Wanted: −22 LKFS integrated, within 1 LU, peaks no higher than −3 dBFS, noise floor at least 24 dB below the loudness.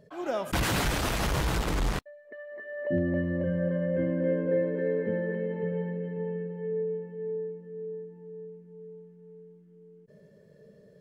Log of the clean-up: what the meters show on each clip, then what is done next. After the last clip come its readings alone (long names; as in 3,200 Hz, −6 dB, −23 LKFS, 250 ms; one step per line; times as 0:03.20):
integrated loudness −30.5 LKFS; sample peak −15.5 dBFS; target loudness −22.0 LKFS
→ level +8.5 dB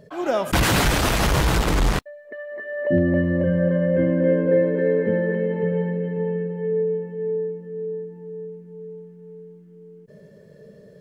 integrated loudness −22.0 LKFS; sample peak −7.0 dBFS; background noise floor −48 dBFS